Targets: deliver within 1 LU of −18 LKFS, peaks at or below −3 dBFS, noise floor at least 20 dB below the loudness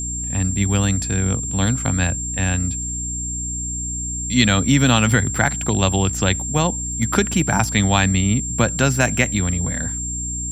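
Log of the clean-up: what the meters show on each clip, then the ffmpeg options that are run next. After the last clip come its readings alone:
mains hum 60 Hz; hum harmonics up to 300 Hz; level of the hum −27 dBFS; interfering tone 7,400 Hz; level of the tone −25 dBFS; integrated loudness −19.0 LKFS; sample peak −2.0 dBFS; target loudness −18.0 LKFS
→ -af "bandreject=frequency=60:width_type=h:width=6,bandreject=frequency=120:width_type=h:width=6,bandreject=frequency=180:width_type=h:width=6,bandreject=frequency=240:width_type=h:width=6,bandreject=frequency=300:width_type=h:width=6"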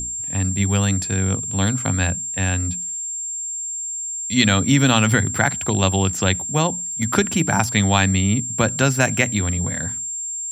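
mains hum none found; interfering tone 7,400 Hz; level of the tone −25 dBFS
→ -af "bandreject=frequency=7400:width=30"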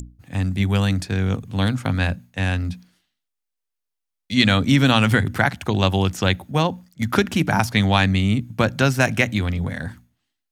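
interfering tone none found; integrated loudness −20.5 LKFS; sample peak −1.5 dBFS; target loudness −18.0 LKFS
→ -af "volume=2.5dB,alimiter=limit=-3dB:level=0:latency=1"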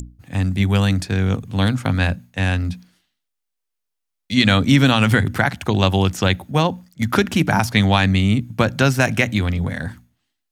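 integrated loudness −18.5 LKFS; sample peak −3.0 dBFS; background noise floor −79 dBFS

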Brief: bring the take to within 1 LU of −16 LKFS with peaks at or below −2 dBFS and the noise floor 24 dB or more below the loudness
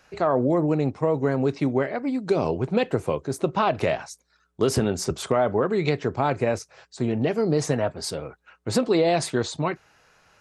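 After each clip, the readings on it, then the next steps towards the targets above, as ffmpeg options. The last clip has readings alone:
integrated loudness −24.5 LKFS; sample peak −9.0 dBFS; target loudness −16.0 LKFS
→ -af "volume=8.5dB,alimiter=limit=-2dB:level=0:latency=1"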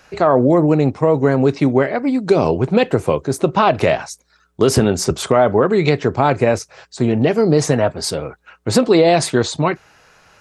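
integrated loudness −16.0 LKFS; sample peak −2.0 dBFS; background noise floor −58 dBFS

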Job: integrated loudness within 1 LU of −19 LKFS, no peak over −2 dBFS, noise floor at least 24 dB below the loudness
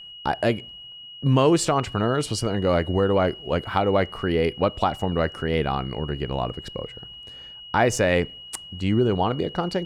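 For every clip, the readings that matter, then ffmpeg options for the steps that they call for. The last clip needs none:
interfering tone 2,900 Hz; level of the tone −39 dBFS; integrated loudness −23.5 LKFS; sample peak −7.0 dBFS; target loudness −19.0 LKFS
→ -af "bandreject=frequency=2900:width=30"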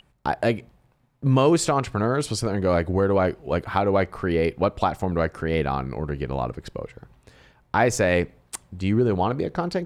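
interfering tone none found; integrated loudness −23.5 LKFS; sample peak −7.0 dBFS; target loudness −19.0 LKFS
→ -af "volume=4.5dB"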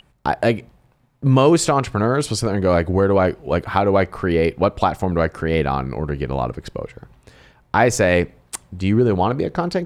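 integrated loudness −19.0 LKFS; sample peak −2.5 dBFS; background noise floor −58 dBFS

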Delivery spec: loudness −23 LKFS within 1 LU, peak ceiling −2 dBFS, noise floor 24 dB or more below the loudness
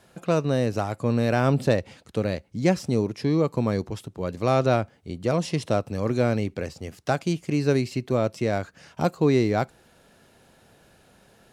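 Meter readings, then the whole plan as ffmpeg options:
integrated loudness −25.0 LKFS; sample peak −7.0 dBFS; target loudness −23.0 LKFS
→ -af "volume=2dB"

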